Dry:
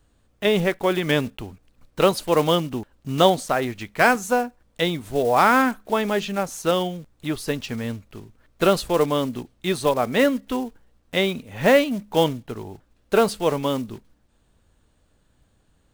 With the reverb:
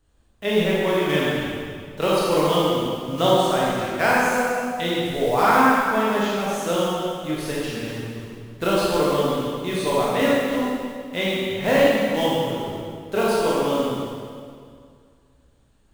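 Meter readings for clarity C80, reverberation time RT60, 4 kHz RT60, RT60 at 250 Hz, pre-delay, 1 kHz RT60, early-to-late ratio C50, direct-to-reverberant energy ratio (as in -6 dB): -1.5 dB, 2.1 s, 1.9 s, 2.3 s, 18 ms, 2.1 s, -3.5 dB, -7.0 dB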